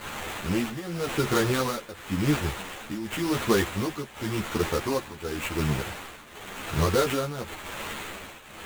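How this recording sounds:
a quantiser's noise floor 6 bits, dither triangular
tremolo triangle 0.92 Hz, depth 85%
aliases and images of a low sample rate 5,200 Hz, jitter 20%
a shimmering, thickened sound

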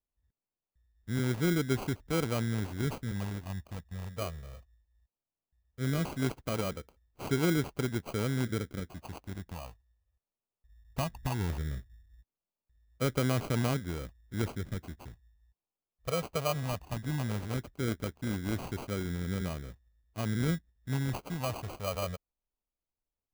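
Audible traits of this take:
phaser sweep stages 12, 0.17 Hz, lowest notch 310–2,200 Hz
aliases and images of a low sample rate 1,800 Hz, jitter 0%

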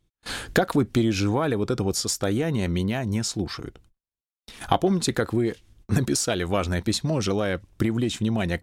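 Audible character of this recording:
background noise floor −94 dBFS
spectral slope −5.0 dB per octave

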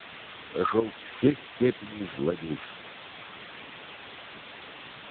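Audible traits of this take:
a buzz of ramps at a fixed pitch in blocks of 8 samples
chopped level 2 Hz, depth 65%, duty 60%
a quantiser's noise floor 6 bits, dither triangular
AMR narrowband

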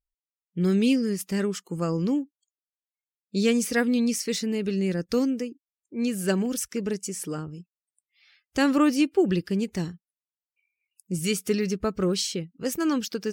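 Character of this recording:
background noise floor −96 dBFS
spectral slope −5.0 dB per octave

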